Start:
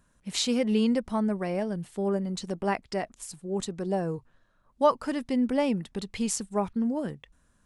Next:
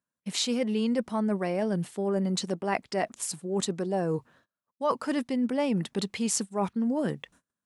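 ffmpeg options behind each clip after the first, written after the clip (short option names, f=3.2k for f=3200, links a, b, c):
-af "agate=range=-30dB:threshold=-59dB:ratio=16:detection=peak,highpass=160,areverse,acompressor=threshold=-33dB:ratio=6,areverse,volume=8dB"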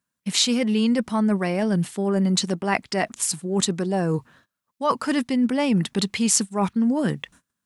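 -af "equalizer=f=530:w=0.84:g=-6.5,volume=9dB"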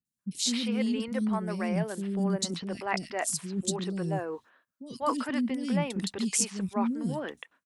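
-filter_complex "[0:a]acrossover=split=330|3400[a][b][c];[c]adelay=50[d];[b]adelay=190[e];[a][e][d]amix=inputs=3:normalize=0,volume=-6.5dB"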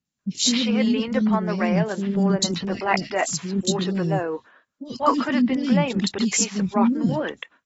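-af "volume=8dB" -ar 44100 -c:a aac -b:a 24k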